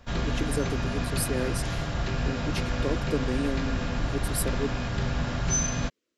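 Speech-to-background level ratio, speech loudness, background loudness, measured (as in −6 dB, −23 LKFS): −3.5 dB, −33.5 LKFS, −30.0 LKFS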